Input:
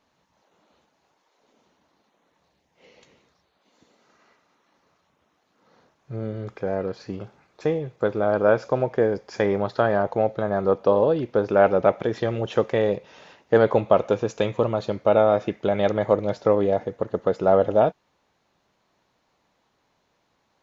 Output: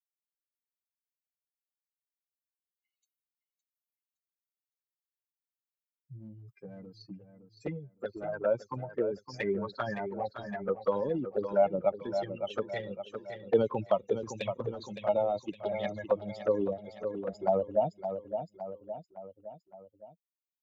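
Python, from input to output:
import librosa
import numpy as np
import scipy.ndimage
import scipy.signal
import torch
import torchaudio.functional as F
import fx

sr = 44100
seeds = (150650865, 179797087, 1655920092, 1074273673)

y = fx.bin_expand(x, sr, power=3.0)
y = fx.highpass(y, sr, hz=280.0, slope=6)
y = fx.transient(y, sr, attack_db=2, sustain_db=7)
y = fx.env_flanger(y, sr, rest_ms=8.6, full_db=-25.5)
y = fx.echo_feedback(y, sr, ms=563, feedback_pct=39, wet_db=-11.0)
y = fx.band_squash(y, sr, depth_pct=40)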